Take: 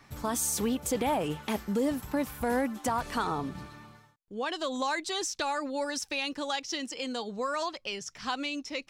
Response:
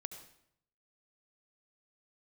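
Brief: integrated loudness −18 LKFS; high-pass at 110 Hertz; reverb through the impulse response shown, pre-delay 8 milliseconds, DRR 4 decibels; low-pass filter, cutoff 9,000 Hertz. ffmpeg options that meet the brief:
-filter_complex "[0:a]highpass=110,lowpass=9000,asplit=2[link_01][link_02];[1:a]atrim=start_sample=2205,adelay=8[link_03];[link_02][link_03]afir=irnorm=-1:irlink=0,volume=-1dB[link_04];[link_01][link_04]amix=inputs=2:normalize=0,volume=12.5dB"

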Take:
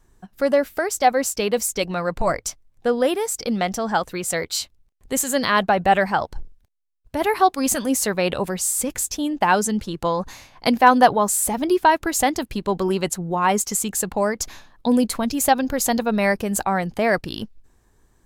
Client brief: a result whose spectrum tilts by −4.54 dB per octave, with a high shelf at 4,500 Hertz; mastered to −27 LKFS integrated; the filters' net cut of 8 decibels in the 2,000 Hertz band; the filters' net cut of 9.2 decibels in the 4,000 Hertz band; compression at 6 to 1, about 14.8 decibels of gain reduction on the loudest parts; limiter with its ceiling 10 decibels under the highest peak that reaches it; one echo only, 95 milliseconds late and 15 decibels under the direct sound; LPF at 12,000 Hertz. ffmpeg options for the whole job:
ffmpeg -i in.wav -af "lowpass=12000,equalizer=frequency=2000:width_type=o:gain=-8.5,equalizer=frequency=4000:width_type=o:gain=-6.5,highshelf=frequency=4500:gain=-5,acompressor=threshold=-26dB:ratio=6,alimiter=limit=-23.5dB:level=0:latency=1,aecho=1:1:95:0.178,volume=6dB" out.wav

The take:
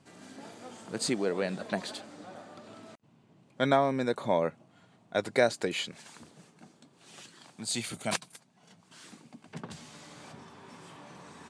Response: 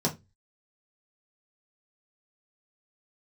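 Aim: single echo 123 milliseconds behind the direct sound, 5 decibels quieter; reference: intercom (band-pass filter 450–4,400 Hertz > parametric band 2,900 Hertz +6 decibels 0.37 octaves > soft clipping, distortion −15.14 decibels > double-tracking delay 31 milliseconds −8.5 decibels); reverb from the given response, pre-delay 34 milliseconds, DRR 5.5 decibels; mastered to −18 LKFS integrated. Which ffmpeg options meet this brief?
-filter_complex "[0:a]aecho=1:1:123:0.562,asplit=2[link_01][link_02];[1:a]atrim=start_sample=2205,adelay=34[link_03];[link_02][link_03]afir=irnorm=-1:irlink=0,volume=-14dB[link_04];[link_01][link_04]amix=inputs=2:normalize=0,highpass=450,lowpass=4400,equalizer=frequency=2900:width_type=o:width=0.37:gain=6,asoftclip=threshold=-19dB,asplit=2[link_05][link_06];[link_06]adelay=31,volume=-8.5dB[link_07];[link_05][link_07]amix=inputs=2:normalize=0,volume=12.5dB"

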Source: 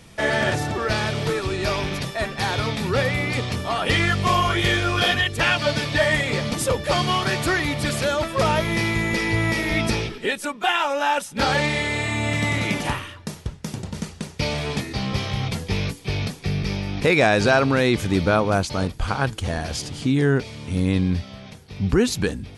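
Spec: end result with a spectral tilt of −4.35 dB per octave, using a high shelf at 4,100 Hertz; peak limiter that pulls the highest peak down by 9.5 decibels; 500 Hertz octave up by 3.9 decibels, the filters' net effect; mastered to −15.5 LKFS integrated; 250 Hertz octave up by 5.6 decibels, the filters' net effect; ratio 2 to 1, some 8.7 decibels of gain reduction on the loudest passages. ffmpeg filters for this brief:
ffmpeg -i in.wav -af "equalizer=frequency=250:width_type=o:gain=6.5,equalizer=frequency=500:width_type=o:gain=3,highshelf=frequency=4100:gain=8.5,acompressor=threshold=-26dB:ratio=2,volume=13.5dB,alimiter=limit=-6.5dB:level=0:latency=1" out.wav

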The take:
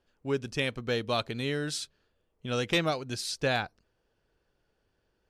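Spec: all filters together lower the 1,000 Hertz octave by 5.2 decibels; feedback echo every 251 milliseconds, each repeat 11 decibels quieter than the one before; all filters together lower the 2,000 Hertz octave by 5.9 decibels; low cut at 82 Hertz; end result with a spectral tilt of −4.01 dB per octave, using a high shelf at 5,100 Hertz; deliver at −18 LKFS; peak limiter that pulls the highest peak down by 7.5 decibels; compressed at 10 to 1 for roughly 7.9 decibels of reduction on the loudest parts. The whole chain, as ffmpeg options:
ffmpeg -i in.wav -af "highpass=82,equalizer=frequency=1000:width_type=o:gain=-6.5,equalizer=frequency=2000:width_type=o:gain=-7,highshelf=frequency=5100:gain=6,acompressor=threshold=-32dB:ratio=10,alimiter=level_in=5dB:limit=-24dB:level=0:latency=1,volume=-5dB,aecho=1:1:251|502|753:0.282|0.0789|0.0221,volume=21.5dB" out.wav

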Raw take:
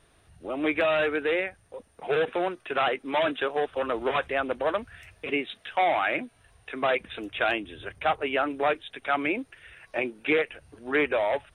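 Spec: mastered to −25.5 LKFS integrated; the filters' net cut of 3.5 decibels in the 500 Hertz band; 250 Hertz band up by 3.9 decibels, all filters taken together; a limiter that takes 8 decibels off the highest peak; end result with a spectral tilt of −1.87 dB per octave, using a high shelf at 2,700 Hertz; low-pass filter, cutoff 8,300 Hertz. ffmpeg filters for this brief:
ffmpeg -i in.wav -af "lowpass=8300,equalizer=frequency=250:width_type=o:gain=7.5,equalizer=frequency=500:width_type=o:gain=-6.5,highshelf=frequency=2700:gain=5,volume=5dB,alimiter=limit=-13.5dB:level=0:latency=1" out.wav

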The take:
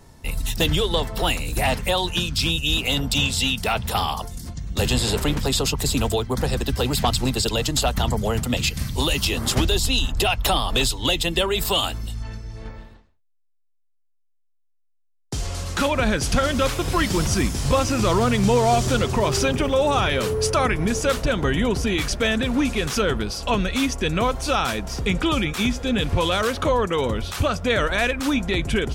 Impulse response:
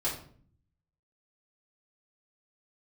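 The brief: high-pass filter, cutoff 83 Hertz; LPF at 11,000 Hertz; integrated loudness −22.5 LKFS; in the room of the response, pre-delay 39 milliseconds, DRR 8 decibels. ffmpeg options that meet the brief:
-filter_complex "[0:a]highpass=83,lowpass=11000,asplit=2[link_01][link_02];[1:a]atrim=start_sample=2205,adelay=39[link_03];[link_02][link_03]afir=irnorm=-1:irlink=0,volume=-14dB[link_04];[link_01][link_04]amix=inputs=2:normalize=0,volume=-1dB"

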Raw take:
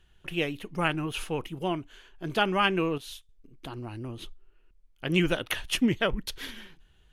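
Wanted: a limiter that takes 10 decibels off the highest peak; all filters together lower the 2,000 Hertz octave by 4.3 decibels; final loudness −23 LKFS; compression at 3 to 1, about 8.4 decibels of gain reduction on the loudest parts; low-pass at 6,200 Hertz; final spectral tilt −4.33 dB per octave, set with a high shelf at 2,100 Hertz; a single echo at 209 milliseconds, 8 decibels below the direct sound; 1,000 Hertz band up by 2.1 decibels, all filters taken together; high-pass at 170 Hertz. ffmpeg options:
ffmpeg -i in.wav -af "highpass=170,lowpass=6200,equalizer=frequency=1000:width_type=o:gain=5.5,equalizer=frequency=2000:width_type=o:gain=-4.5,highshelf=frequency=2100:gain=-6,acompressor=threshold=-31dB:ratio=3,alimiter=level_in=3.5dB:limit=-24dB:level=0:latency=1,volume=-3.5dB,aecho=1:1:209:0.398,volume=16.5dB" out.wav

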